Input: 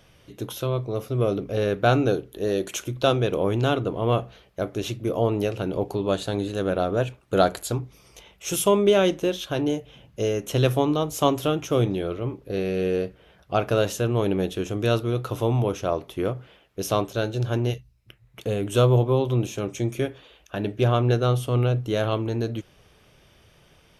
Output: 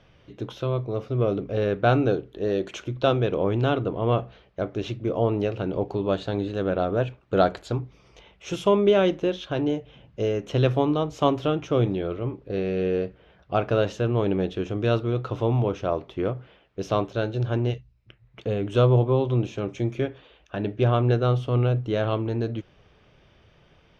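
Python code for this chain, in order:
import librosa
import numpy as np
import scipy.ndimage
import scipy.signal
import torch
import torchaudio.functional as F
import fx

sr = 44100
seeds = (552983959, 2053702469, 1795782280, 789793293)

y = fx.air_absorb(x, sr, metres=180.0)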